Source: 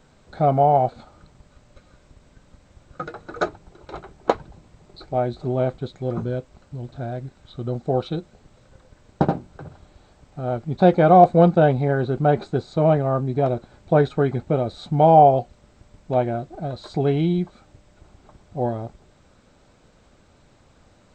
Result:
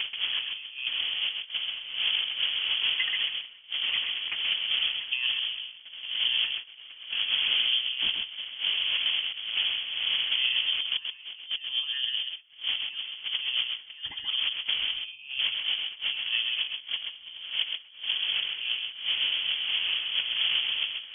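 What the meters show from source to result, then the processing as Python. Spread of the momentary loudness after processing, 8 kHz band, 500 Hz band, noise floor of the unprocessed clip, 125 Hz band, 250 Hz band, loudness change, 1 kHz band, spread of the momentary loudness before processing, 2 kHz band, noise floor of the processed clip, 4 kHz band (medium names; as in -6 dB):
9 LU, no reading, under -35 dB, -56 dBFS, under -40 dB, under -35 dB, -6.5 dB, -29.5 dB, 19 LU, +6.5 dB, -48 dBFS, +23.0 dB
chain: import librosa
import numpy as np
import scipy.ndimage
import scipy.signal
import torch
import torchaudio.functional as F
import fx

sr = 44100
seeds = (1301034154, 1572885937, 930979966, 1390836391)

p1 = fx.dmg_wind(x, sr, seeds[0], corner_hz=430.0, level_db=-17.0)
p2 = fx.dynamic_eq(p1, sr, hz=700.0, q=5.4, threshold_db=-32.0, ratio=4.0, max_db=-7)
p3 = fx.over_compress(p2, sr, threshold_db=-25.0, ratio=-0.5)
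p4 = scipy.signal.sosfilt(scipy.signal.butter(2, 41.0, 'highpass', fs=sr, output='sos'), p3)
p5 = p4 + fx.echo_single(p4, sr, ms=131, db=-5.0, dry=0)
p6 = fx.freq_invert(p5, sr, carrier_hz=3300)
y = p6 * librosa.db_to_amplitude(-7.5)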